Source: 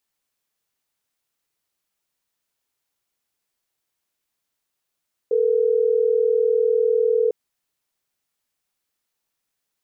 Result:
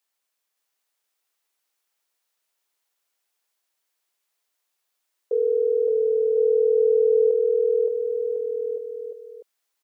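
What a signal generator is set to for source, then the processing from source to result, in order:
call progress tone ringback tone, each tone -18.5 dBFS
high-pass 430 Hz 12 dB/octave; on a send: bouncing-ball echo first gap 570 ms, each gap 0.85×, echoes 5

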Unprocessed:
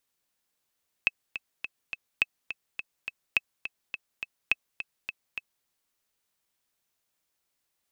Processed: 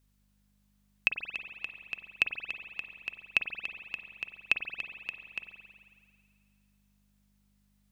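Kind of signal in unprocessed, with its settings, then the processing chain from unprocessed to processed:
metronome 209 bpm, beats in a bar 4, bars 4, 2.6 kHz, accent 11.5 dB -8.5 dBFS
hum 50 Hz, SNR 30 dB; spring tank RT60 2 s, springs 45 ms, chirp 25 ms, DRR 6 dB

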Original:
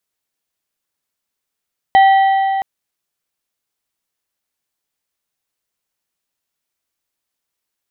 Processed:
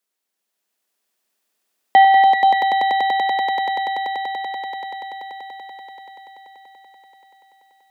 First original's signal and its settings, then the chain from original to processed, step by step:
metal hit plate, length 0.67 s, lowest mode 777 Hz, modes 4, decay 3.58 s, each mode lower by 10 dB, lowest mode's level -5 dB
elliptic high-pass 200 Hz, stop band 40 dB; echo with a slow build-up 96 ms, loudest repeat 8, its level -4 dB

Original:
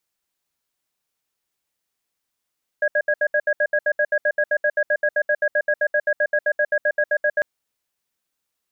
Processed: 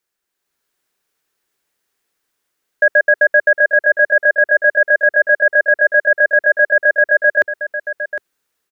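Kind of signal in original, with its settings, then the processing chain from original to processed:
cadence 597 Hz, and 1.65 kHz, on 0.06 s, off 0.07 s, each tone -18.5 dBFS 4.60 s
fifteen-band graphic EQ 100 Hz -4 dB, 400 Hz +7 dB, 1.6 kHz +6 dB; level rider gain up to 6 dB; on a send: delay 758 ms -11.5 dB

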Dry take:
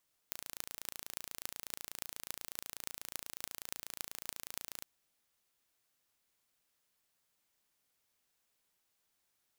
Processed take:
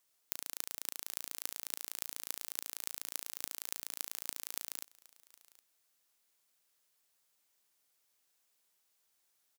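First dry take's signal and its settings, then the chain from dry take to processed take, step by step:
pulse train 28.2 per s, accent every 8, -10 dBFS 4.53 s
tone controls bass -7 dB, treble +4 dB; delay 765 ms -22 dB

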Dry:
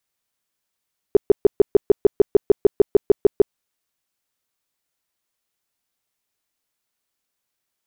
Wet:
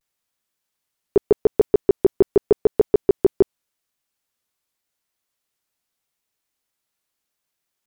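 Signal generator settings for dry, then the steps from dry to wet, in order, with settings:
tone bursts 407 Hz, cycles 7, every 0.15 s, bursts 16, -6.5 dBFS
vibrato 0.83 Hz 87 cents

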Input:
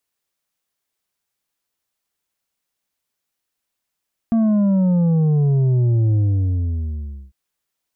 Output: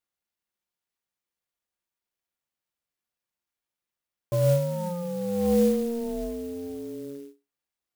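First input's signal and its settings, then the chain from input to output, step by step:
sub drop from 230 Hz, over 3.00 s, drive 6 dB, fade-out 1.17 s, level -14 dB
inharmonic resonator 64 Hz, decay 0.24 s, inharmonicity 0.03; ring modulator 350 Hz; sampling jitter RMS 0.044 ms

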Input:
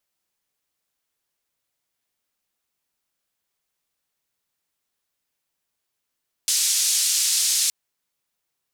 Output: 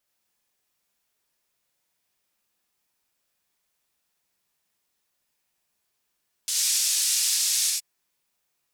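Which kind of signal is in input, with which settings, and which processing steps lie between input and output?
noise band 5.2–7.7 kHz, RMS -21 dBFS 1.22 s
peak limiter -17.5 dBFS; gated-style reverb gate 110 ms rising, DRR -1 dB

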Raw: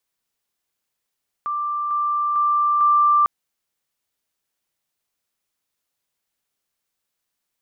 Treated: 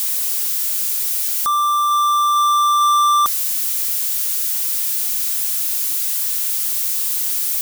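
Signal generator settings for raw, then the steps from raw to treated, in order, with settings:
level ladder 1.18 kHz -21.5 dBFS, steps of 3 dB, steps 4, 0.45 s 0.00 s
zero-crossing glitches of -26.5 dBFS; waveshaping leveller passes 3

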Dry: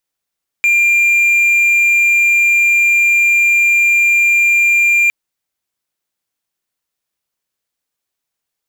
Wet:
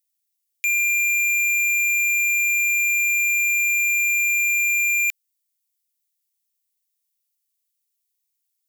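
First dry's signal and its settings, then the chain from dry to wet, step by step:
tone triangle 2.39 kHz -6.5 dBFS 4.46 s
steep high-pass 1.7 kHz 72 dB/octave; differentiator

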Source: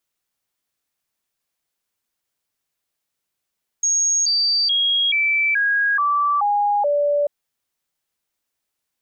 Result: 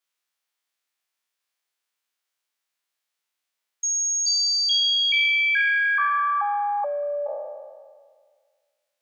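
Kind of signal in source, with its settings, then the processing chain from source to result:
stepped sine 6.57 kHz down, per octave 2, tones 8, 0.43 s, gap 0.00 s -15.5 dBFS
spectral sustain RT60 1.76 s; high-pass 1.4 kHz 6 dB/octave; treble shelf 5.5 kHz -9 dB

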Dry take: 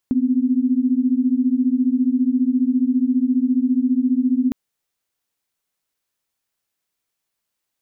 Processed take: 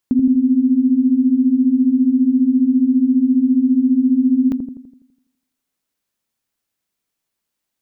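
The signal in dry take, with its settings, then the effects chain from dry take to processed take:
chord B3/C4 sine, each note -18 dBFS 4.41 s
peaking EQ 230 Hz +4 dB 0.77 oct; feedback echo behind a low-pass 83 ms, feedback 52%, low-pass 430 Hz, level -3 dB

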